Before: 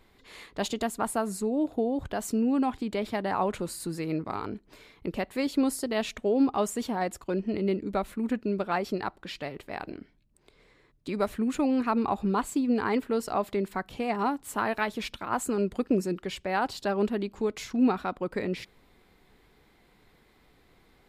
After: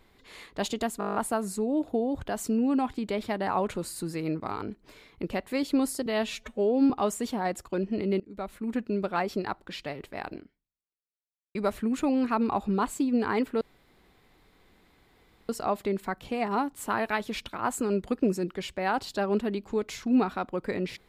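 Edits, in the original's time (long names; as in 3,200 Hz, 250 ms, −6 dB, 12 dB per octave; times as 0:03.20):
0:00.99: stutter 0.02 s, 9 plays
0:05.90–0:06.46: time-stretch 1.5×
0:07.76–0:08.62: fade in equal-power, from −21 dB
0:09.91–0:11.11: fade out exponential
0:13.17: splice in room tone 1.88 s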